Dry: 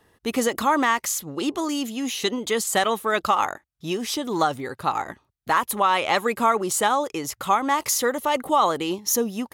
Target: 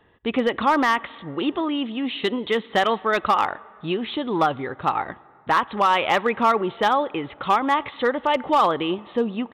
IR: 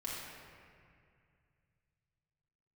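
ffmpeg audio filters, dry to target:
-filter_complex "[0:a]aresample=8000,aresample=44100,asplit=2[s0][s1];[1:a]atrim=start_sample=2205,asetrate=34839,aresample=44100[s2];[s1][s2]afir=irnorm=-1:irlink=0,volume=0.0631[s3];[s0][s3]amix=inputs=2:normalize=0,volume=4.22,asoftclip=hard,volume=0.237,volume=1.19"

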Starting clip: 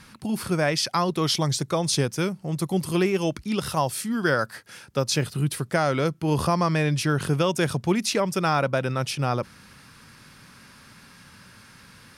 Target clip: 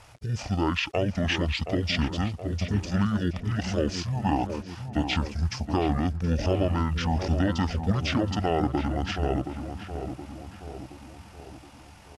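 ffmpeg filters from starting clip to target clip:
-filter_complex "[0:a]acrusher=bits=8:mix=0:aa=0.000001,asetrate=24046,aresample=44100,atempo=1.83401,asplit=2[s0][s1];[s1]adelay=722,lowpass=f=1700:p=1,volume=0.398,asplit=2[s2][s3];[s3]adelay=722,lowpass=f=1700:p=1,volume=0.54,asplit=2[s4][s5];[s5]adelay=722,lowpass=f=1700:p=1,volume=0.54,asplit=2[s6][s7];[s7]adelay=722,lowpass=f=1700:p=1,volume=0.54,asplit=2[s8][s9];[s9]adelay=722,lowpass=f=1700:p=1,volume=0.54,asplit=2[s10][s11];[s11]adelay=722,lowpass=f=1700:p=1,volume=0.54[s12];[s0][s2][s4][s6][s8][s10][s12]amix=inputs=7:normalize=0,volume=0.75"

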